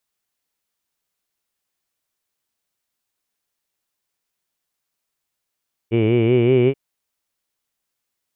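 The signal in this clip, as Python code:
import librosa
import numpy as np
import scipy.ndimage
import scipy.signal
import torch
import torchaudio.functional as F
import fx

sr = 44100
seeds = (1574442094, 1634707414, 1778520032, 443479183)

y = fx.formant_vowel(sr, seeds[0], length_s=0.83, hz=110.0, glide_st=3.0, vibrato_hz=5.3, vibrato_st=0.9, f1_hz=390.0, f2_hz=2300.0, f3_hz=2900.0)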